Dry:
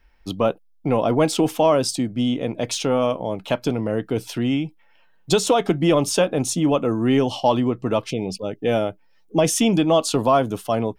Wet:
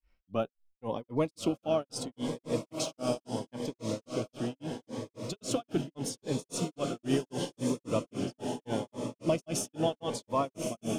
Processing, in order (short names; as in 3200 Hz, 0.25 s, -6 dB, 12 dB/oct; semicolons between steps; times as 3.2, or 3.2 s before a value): diffused feedback echo 1.219 s, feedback 52%, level -4 dB; grains 0.231 s, grains 3.7/s, pitch spread up and down by 0 st; cascading phaser rising 0.76 Hz; gain -8.5 dB